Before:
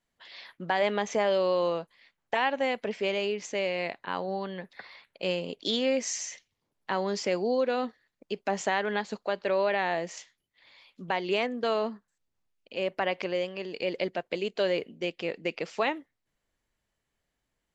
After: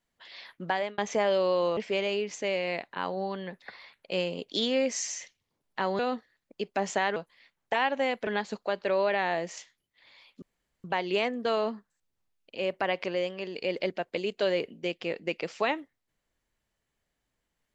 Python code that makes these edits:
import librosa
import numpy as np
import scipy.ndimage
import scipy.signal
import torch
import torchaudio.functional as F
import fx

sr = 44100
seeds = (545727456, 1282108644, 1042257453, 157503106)

y = fx.edit(x, sr, fx.fade_out_span(start_s=0.69, length_s=0.29),
    fx.move(start_s=1.77, length_s=1.11, to_s=8.87),
    fx.cut(start_s=7.1, length_s=0.6),
    fx.insert_room_tone(at_s=11.02, length_s=0.42), tone=tone)